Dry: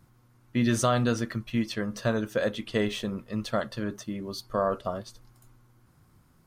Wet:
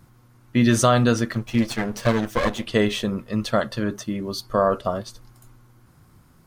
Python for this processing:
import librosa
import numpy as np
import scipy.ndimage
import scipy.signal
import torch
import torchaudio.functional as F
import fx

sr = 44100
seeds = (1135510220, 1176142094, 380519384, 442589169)

y = fx.lower_of_two(x, sr, delay_ms=8.5, at=(1.33, 2.67))
y = y * librosa.db_to_amplitude(7.0)